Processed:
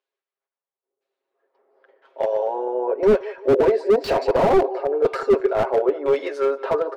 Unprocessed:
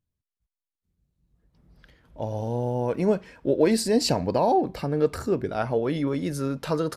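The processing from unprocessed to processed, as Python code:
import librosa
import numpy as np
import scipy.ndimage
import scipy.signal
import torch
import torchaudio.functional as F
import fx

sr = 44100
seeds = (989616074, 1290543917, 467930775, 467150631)

p1 = scipy.signal.sosfilt(scipy.signal.cheby1(5, 1.0, 380.0, 'highpass', fs=sr, output='sos'), x)
p2 = fx.filter_lfo_lowpass(p1, sr, shape='saw_down', hz=0.99, low_hz=620.0, high_hz=3500.0, q=0.76)
p3 = p2 + 0.9 * np.pad(p2, (int(7.4 * sr / 1000.0), 0))[:len(p2)]
p4 = p3 + fx.echo_feedback(p3, sr, ms=175, feedback_pct=47, wet_db=-20.0, dry=0)
p5 = fx.slew_limit(p4, sr, full_power_hz=45.0)
y = F.gain(torch.from_numpy(p5), 8.0).numpy()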